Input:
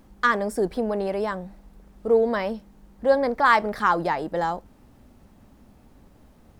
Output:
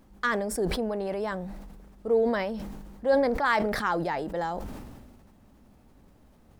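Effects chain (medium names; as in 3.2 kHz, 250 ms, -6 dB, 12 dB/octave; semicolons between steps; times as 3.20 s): dynamic bell 1.1 kHz, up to -5 dB, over -34 dBFS, Q 3; decay stretcher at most 33 dB/s; trim -5 dB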